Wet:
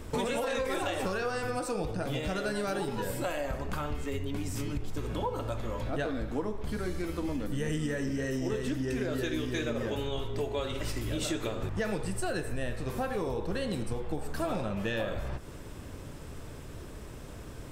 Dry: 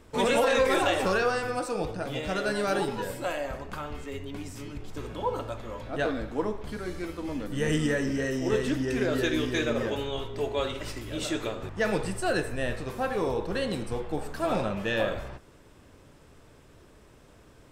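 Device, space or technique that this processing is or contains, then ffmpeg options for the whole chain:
ASMR close-microphone chain: -af "lowshelf=f=220:g=6.5,acompressor=threshold=0.0141:ratio=6,highshelf=f=8400:g=6.5,volume=2.24"

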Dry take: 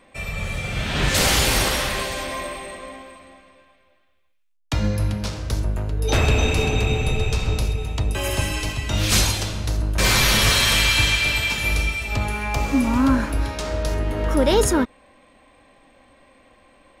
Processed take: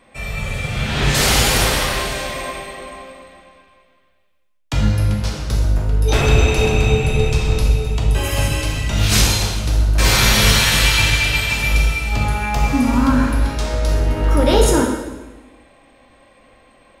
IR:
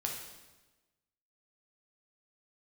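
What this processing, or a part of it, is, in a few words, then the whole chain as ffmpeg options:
bathroom: -filter_complex "[1:a]atrim=start_sample=2205[s0];[0:a][s0]afir=irnorm=-1:irlink=0,volume=1.19"

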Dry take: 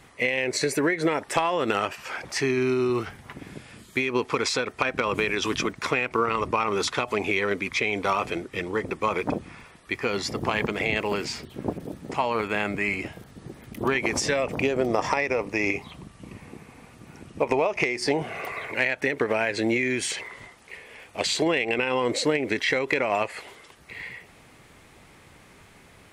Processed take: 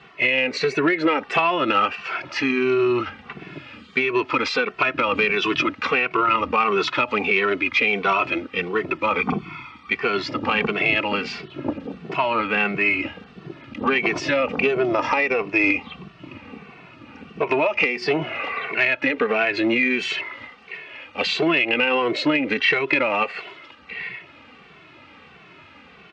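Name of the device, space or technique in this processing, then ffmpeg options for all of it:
barber-pole flanger into a guitar amplifier: -filter_complex "[0:a]asettb=1/sr,asplit=3[s0][s1][s2];[s0]atrim=end=9.184[s3];[s1]atrim=start=9.18:end=9.92,asetpts=PTS-STARTPTS,afade=t=in:d=0.004:c=qsin,afade=t=out:st=0.736:d=0.004:c=qsin,aecho=1:1:0.9:0.8,atrim=end_sample=32634[s4];[s2]atrim=start=9.916[s5];[s3][s4]acrossfade=d=0.004:c1=hsin:c2=qsin[s6];[s6][s5]acrossfade=d=0.004:c1=qsin:c2=hsin,asplit=2[s7][s8];[s8]adelay=2.2,afreqshift=-1.5[s9];[s7][s9]amix=inputs=2:normalize=1,asoftclip=type=tanh:threshold=0.133,highpass=98,equalizer=f=110:t=q:w=4:g=-6,equalizer=f=290:t=q:w=4:g=3,equalizer=f=1300:t=q:w=4:g=7,equalizer=f=2700:t=q:w=4:g=9,lowpass=f=4500:w=0.5412,lowpass=f=4500:w=1.3066,volume=2"

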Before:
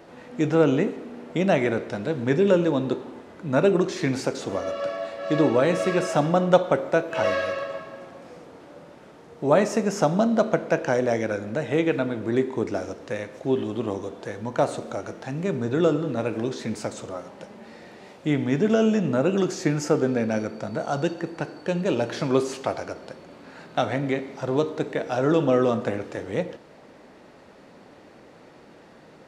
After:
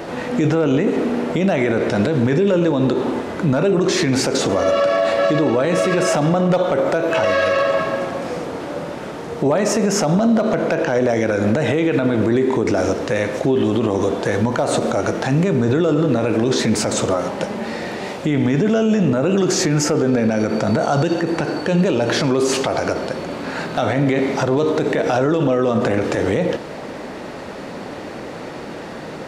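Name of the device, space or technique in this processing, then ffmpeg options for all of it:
loud club master: -filter_complex "[0:a]asettb=1/sr,asplit=3[s0][s1][s2];[s0]atrim=end=10.394[s3];[s1]atrim=start=10.39:end=11.09,asetpts=PTS-STARTPTS,afade=t=in:d=0.004:c=qsin,afade=t=out:st=0.696:d=0.004:c=qsin,acrossover=split=6100[s4][s5];[s5]acompressor=threshold=0.002:ratio=4:attack=1:release=60[s6];[s4][s6]amix=inputs=2:normalize=0[s7];[s2]atrim=start=11.086[s8];[s3][s7]acrossfade=d=0.004:c1=hsin:c2=qsin[s9];[s9][s8]acrossfade=d=0.004:c1=qsin:c2=hsin,acompressor=threshold=0.0501:ratio=2,asoftclip=type=hard:threshold=0.168,alimiter=level_in=21.1:limit=0.891:release=50:level=0:latency=1,volume=0.398"

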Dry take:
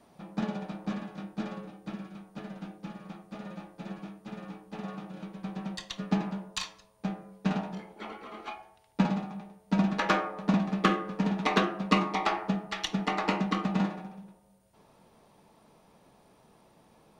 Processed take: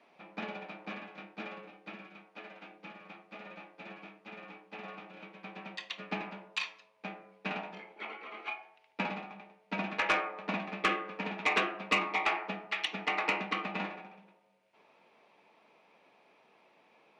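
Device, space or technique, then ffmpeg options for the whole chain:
intercom: -filter_complex "[0:a]asettb=1/sr,asplit=3[s0][s1][s2];[s0]atrim=end=2.254[s3];[s1]atrim=start=2.25:end=2.72,asetpts=PTS-STARTPTS,afade=t=in:d=0.004:c=qsin,afade=t=out:st=0.466:d=0.004:c=qsin,highpass=250[s4];[s2]atrim=start=2.716[s5];[s3][s4]acrossfade=d=0.004:c1=hsin:c2=qsin[s6];[s6][s5]acrossfade=d=0.004:c1=qsin:c2=hsin,highpass=360,lowpass=4100,equalizer=f=2400:t=o:w=0.58:g=12,asoftclip=type=tanh:threshold=0.168,volume=0.708"

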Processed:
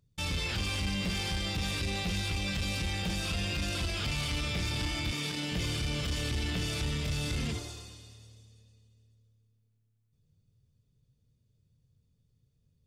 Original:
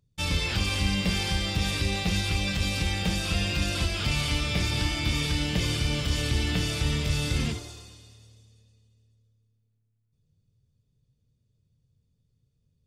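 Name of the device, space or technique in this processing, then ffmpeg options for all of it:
soft clipper into limiter: -filter_complex "[0:a]asoftclip=type=tanh:threshold=0.0841,alimiter=level_in=1.33:limit=0.0631:level=0:latency=1:release=29,volume=0.75,asettb=1/sr,asplit=3[s0][s1][s2];[s0]atrim=end=5.114[s3];[s1]atrim=start=5.11:end=5.52,asetpts=PTS-STARTPTS,afade=t=in:d=0.004:c=qsin,afade=t=out:st=0.406:d=0.004:c=qsin,highpass=f=140:w=0.5412,highpass=f=140:w=1.3066[s4];[s2]atrim=start=5.516[s5];[s3][s4]acrossfade=d=0.004:c1=hsin:c2=qsin[s6];[s6][s5]acrossfade=d=0.004:c1=qsin:c2=hsin"

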